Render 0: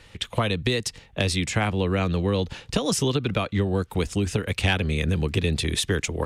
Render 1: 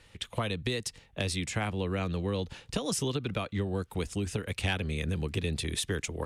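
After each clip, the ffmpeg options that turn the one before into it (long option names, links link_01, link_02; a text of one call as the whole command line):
ffmpeg -i in.wav -af "equalizer=frequency=9900:width=1.4:gain=4,volume=-8dB" out.wav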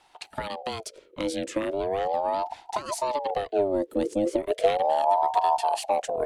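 ffmpeg -i in.wav -af "asubboost=boost=7.5:cutoff=160,aeval=exprs='val(0)*sin(2*PI*620*n/s+620*0.35/0.37*sin(2*PI*0.37*n/s))':channel_layout=same" out.wav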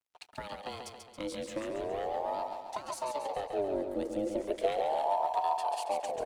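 ffmpeg -i in.wav -filter_complex "[0:a]aeval=exprs='sgn(val(0))*max(abs(val(0))-0.00237,0)':channel_layout=same,asplit=2[link_01][link_02];[link_02]aecho=0:1:138|276|414|552|690|828|966:0.501|0.271|0.146|0.0789|0.0426|0.023|0.0124[link_03];[link_01][link_03]amix=inputs=2:normalize=0,volume=-8.5dB" out.wav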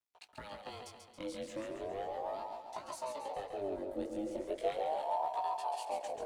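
ffmpeg -i in.wav -af "flanger=delay=17:depth=5:speed=0.36,volume=-2.5dB" out.wav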